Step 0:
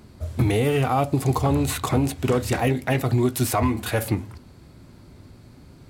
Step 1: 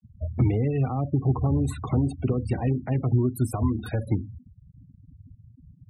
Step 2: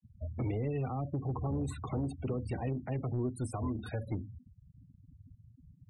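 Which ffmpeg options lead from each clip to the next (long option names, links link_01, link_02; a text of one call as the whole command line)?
ffmpeg -i in.wav -filter_complex "[0:a]acrossover=split=280[link_01][link_02];[link_02]acompressor=threshold=-31dB:ratio=8[link_03];[link_01][link_03]amix=inputs=2:normalize=0,afftfilt=real='re*gte(hypot(re,im),0.0316)':imag='im*gte(hypot(re,im),0.0316)':win_size=1024:overlap=0.75,acrossover=split=400|1200|8000[link_04][link_05][link_06][link_07];[link_06]alimiter=level_in=13dB:limit=-24dB:level=0:latency=1:release=100,volume=-13dB[link_08];[link_04][link_05][link_08][link_07]amix=inputs=4:normalize=0" out.wav
ffmpeg -i in.wav -filter_complex "[0:a]acrossover=split=330[link_01][link_02];[link_01]asoftclip=type=tanh:threshold=-24.5dB[link_03];[link_03][link_02]amix=inputs=2:normalize=0,aresample=22050,aresample=44100,volume=-7dB" out.wav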